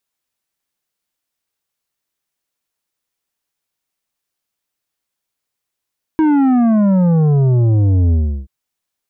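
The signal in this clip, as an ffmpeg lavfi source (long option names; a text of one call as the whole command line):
ffmpeg -f lavfi -i "aevalsrc='0.299*clip((2.28-t)/0.35,0,1)*tanh(2.82*sin(2*PI*320*2.28/log(65/320)*(exp(log(65/320)*t/2.28)-1)))/tanh(2.82)':duration=2.28:sample_rate=44100" out.wav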